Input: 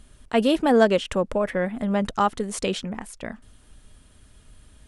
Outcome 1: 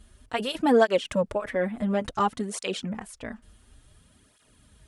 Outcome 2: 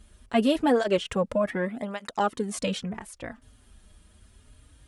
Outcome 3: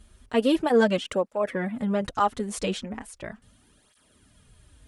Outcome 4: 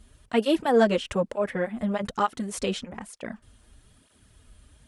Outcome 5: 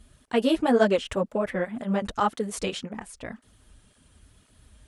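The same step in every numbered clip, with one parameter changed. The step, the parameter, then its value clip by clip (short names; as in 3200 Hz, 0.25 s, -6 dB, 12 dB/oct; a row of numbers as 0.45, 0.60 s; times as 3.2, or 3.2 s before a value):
tape flanging out of phase, nulls at: 0.57, 0.25, 0.38, 1.1, 1.9 Hz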